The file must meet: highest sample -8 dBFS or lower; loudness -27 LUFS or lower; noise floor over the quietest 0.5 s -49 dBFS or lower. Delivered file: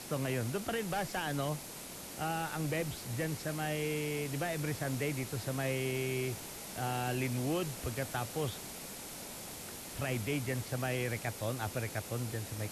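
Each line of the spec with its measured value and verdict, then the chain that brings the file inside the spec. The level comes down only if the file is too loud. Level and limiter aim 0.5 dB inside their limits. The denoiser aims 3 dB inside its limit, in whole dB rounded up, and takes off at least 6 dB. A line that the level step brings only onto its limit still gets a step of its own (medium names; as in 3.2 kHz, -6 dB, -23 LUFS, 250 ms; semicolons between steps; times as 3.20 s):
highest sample -23.0 dBFS: pass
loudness -36.5 LUFS: pass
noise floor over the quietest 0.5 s -46 dBFS: fail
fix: noise reduction 6 dB, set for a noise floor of -46 dBFS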